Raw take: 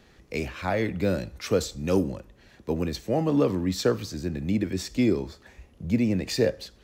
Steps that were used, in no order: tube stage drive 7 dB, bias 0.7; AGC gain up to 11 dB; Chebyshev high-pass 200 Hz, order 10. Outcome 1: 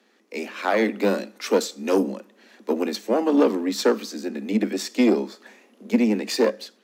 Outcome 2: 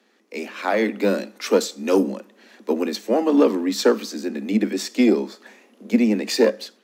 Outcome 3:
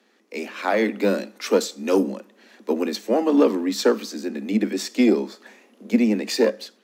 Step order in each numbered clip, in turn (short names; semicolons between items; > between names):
AGC > tube stage > Chebyshev high-pass; tube stage > Chebyshev high-pass > AGC; tube stage > AGC > Chebyshev high-pass